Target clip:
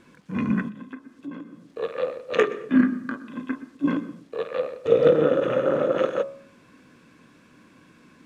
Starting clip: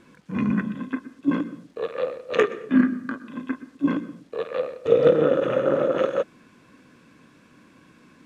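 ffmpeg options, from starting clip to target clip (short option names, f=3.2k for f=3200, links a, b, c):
-filter_complex "[0:a]bandreject=f=68.75:t=h:w=4,bandreject=f=137.5:t=h:w=4,bandreject=f=206.25:t=h:w=4,bandreject=f=275:t=h:w=4,bandreject=f=343.75:t=h:w=4,bandreject=f=412.5:t=h:w=4,bandreject=f=481.25:t=h:w=4,bandreject=f=550:t=h:w=4,bandreject=f=618.75:t=h:w=4,bandreject=f=687.5:t=h:w=4,bandreject=f=756.25:t=h:w=4,bandreject=f=825:t=h:w=4,bandreject=f=893.75:t=h:w=4,bandreject=f=962.5:t=h:w=4,bandreject=f=1.03125k:t=h:w=4,bandreject=f=1.1k:t=h:w=4,bandreject=f=1.16875k:t=h:w=4,bandreject=f=1.2375k:t=h:w=4,bandreject=f=1.30625k:t=h:w=4,asettb=1/sr,asplit=3[a][b][c];[a]atrim=end=0.684[d];[b]atrim=start=0.68:end=1.69,asetpts=PTS-STARTPTS,afade=t=in:d=0.004:c=qsin,afade=t=out:st=1.006:d=0.004:c=qsin,acompressor=threshold=-38dB:ratio=3[e];[c]atrim=start=1.686[f];[d][e]acrossfade=d=0.004:c1=hsin:c2=qsin[g];[g][f]acrossfade=d=0.004:c1=qsin:c2=hsin"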